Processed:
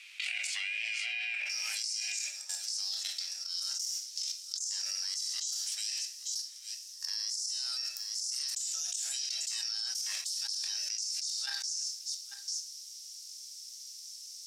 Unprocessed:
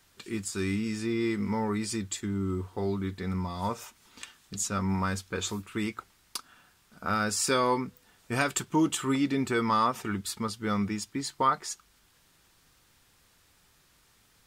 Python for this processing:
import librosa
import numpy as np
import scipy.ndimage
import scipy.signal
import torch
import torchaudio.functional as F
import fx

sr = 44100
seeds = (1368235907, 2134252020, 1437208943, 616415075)

y = fx.tilt_eq(x, sr, slope=3.5)
y = fx.leveller(y, sr, passes=1)
y = fx.level_steps(y, sr, step_db=17)
y = fx.auto_swell(y, sr, attack_ms=105.0)
y = y * np.sin(2.0 * np.pi * 390.0 * np.arange(len(y)) / sr)
y = fx.ladder_bandpass(y, sr, hz=fx.steps((0.0, 2600.0), (1.44, 5800.0)), resonance_pct=75)
y = y + 10.0 ** (-22.5 / 20.0) * np.pad(y, (int(843 * sr / 1000.0), 0))[:len(y)]
y = fx.room_shoebox(y, sr, seeds[0], volume_m3=120.0, walls='mixed', distance_m=0.47)
y = fx.env_flatten(y, sr, amount_pct=100)
y = y * librosa.db_to_amplitude(-8.5)